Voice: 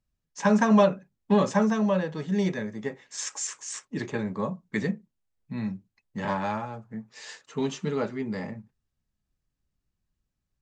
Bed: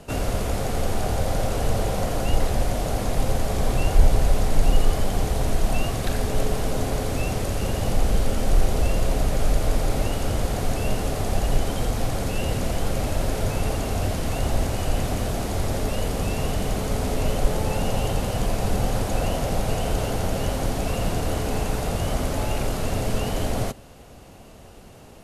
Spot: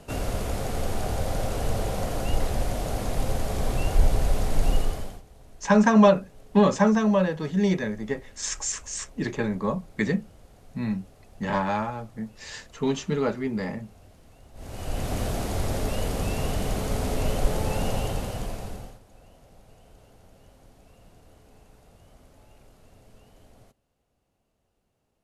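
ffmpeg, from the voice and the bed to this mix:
-filter_complex "[0:a]adelay=5250,volume=3dB[a];[1:a]volume=21.5dB,afade=t=out:st=4.73:d=0.49:silence=0.0630957,afade=t=in:st=14.54:d=0.66:silence=0.0530884,afade=t=out:st=17.86:d=1.13:silence=0.0446684[b];[a][b]amix=inputs=2:normalize=0"

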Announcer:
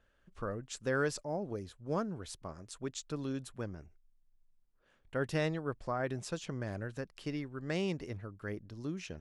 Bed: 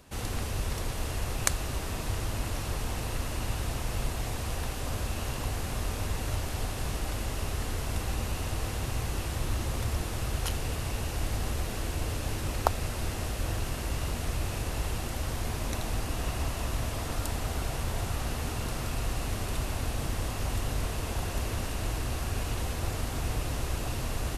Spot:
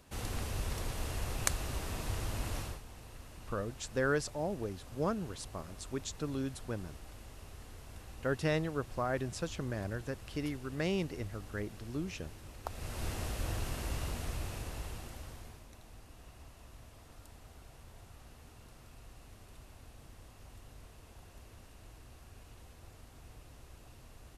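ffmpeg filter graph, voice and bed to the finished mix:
-filter_complex "[0:a]adelay=3100,volume=1dB[a];[1:a]volume=8dB,afade=t=out:st=2.59:d=0.22:silence=0.223872,afade=t=in:st=12.63:d=0.44:silence=0.223872,afade=t=out:st=13.9:d=1.76:silence=0.133352[b];[a][b]amix=inputs=2:normalize=0"

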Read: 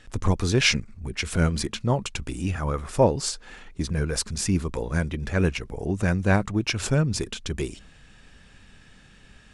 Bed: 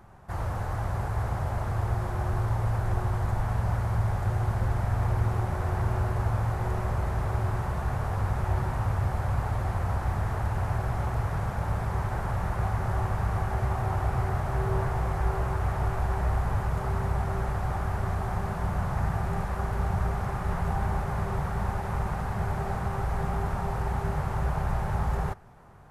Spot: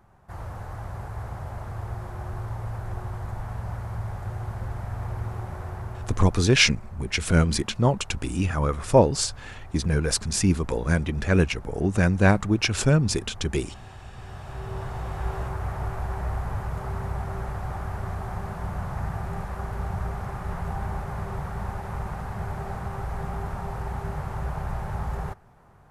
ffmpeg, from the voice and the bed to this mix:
-filter_complex "[0:a]adelay=5950,volume=2.5dB[a];[1:a]volume=8.5dB,afade=t=out:st=5.56:d=0.97:silence=0.281838,afade=t=in:st=14.14:d=1.15:silence=0.199526[b];[a][b]amix=inputs=2:normalize=0"

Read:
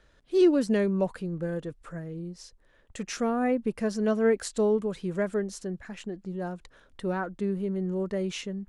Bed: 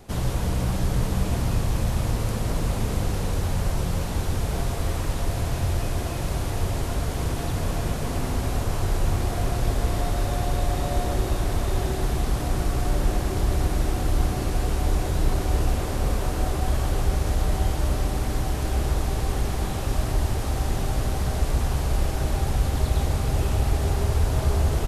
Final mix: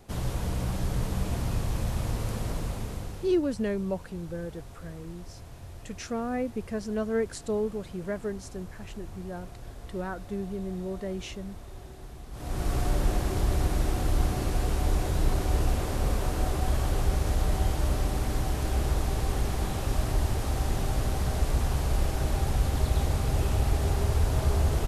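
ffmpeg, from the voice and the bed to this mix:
-filter_complex "[0:a]adelay=2900,volume=-4.5dB[a];[1:a]volume=11dB,afade=t=out:st=2.41:d=0.99:silence=0.199526,afade=t=in:st=12.31:d=0.42:silence=0.149624[b];[a][b]amix=inputs=2:normalize=0"

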